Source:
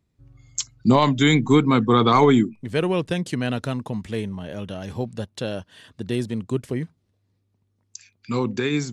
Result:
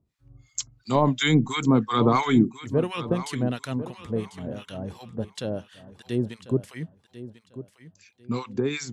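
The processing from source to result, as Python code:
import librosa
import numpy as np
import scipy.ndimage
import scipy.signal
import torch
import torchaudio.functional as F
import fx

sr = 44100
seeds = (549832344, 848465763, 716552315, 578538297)

y = fx.harmonic_tremolo(x, sr, hz=2.9, depth_pct=100, crossover_hz=1000.0)
y = fx.echo_feedback(y, sr, ms=1045, feedback_pct=24, wet_db=-14.0)
y = F.gain(torch.from_numpy(y), 1.0).numpy()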